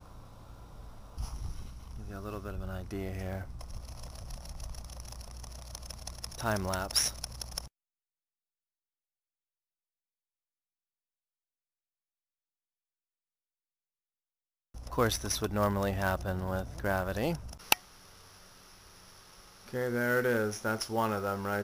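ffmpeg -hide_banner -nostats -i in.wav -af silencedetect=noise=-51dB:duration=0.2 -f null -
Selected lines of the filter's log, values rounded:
silence_start: 7.68
silence_end: 14.74 | silence_duration: 7.07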